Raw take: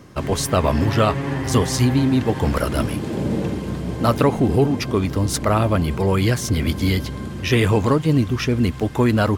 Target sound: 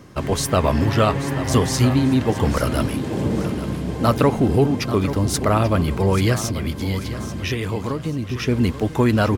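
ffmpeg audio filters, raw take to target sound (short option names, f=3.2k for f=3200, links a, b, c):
-filter_complex "[0:a]asettb=1/sr,asplit=3[a][b][c];[a]atrim=end=6.454[d];[b]atrim=start=6.45:end=8.48,asetpts=PTS-STARTPTS,afade=t=in:d=0.004:c=qsin,afade=t=out:st=2.026:d=0.004:c=qsin,acompressor=threshold=-22dB:ratio=6[e];[c]atrim=start=8.476[f];[d][e]acrossfade=d=0.004:c1=hsin:c2=qsin[g];[g][f]acrossfade=d=0.004:c1=qsin:c2=hsin,aecho=1:1:837|1674|2511|3348:0.237|0.0854|0.0307|0.0111"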